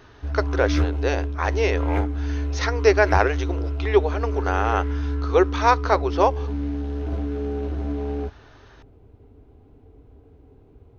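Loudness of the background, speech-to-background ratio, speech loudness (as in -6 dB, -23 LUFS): -27.0 LUFS, 4.0 dB, -23.0 LUFS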